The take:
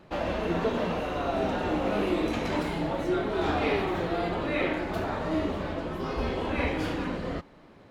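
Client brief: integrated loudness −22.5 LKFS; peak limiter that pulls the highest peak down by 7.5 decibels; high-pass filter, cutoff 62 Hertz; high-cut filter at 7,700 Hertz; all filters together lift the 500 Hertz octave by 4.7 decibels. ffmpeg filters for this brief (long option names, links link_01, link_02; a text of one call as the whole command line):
ffmpeg -i in.wav -af "highpass=62,lowpass=7700,equalizer=frequency=500:width_type=o:gain=6,volume=6dB,alimiter=limit=-13dB:level=0:latency=1" out.wav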